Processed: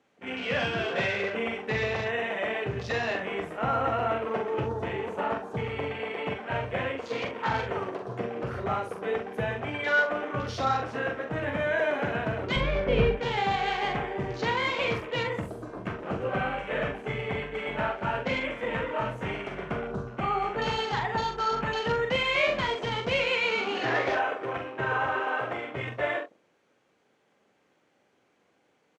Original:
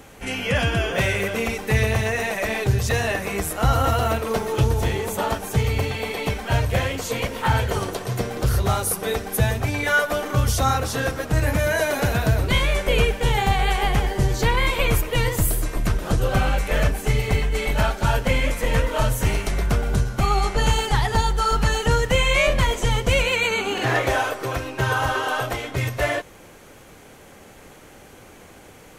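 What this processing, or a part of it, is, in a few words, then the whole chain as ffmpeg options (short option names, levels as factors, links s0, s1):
over-cleaned archive recording: -filter_complex "[0:a]highpass=190,lowpass=5000,afwtdn=0.02,asettb=1/sr,asplit=3[s0][s1][s2];[s0]atrim=end=12.564[s3];[s1]atrim=start=12.56:end=13.17,asetpts=PTS-STARTPTS,afade=t=in:d=0.004:c=qsin,afade=t=out:st=0.606:d=0.004:c=qsin,aemphasis=mode=reproduction:type=riaa[s4];[s2]atrim=start=13.166[s5];[s3][s4]acrossfade=d=0.004:c1=hsin:c2=qsin[s6];[s6][s5]acrossfade=d=0.004:c1=qsin:c2=hsin,aecho=1:1:43|67:0.531|0.2,volume=0.501"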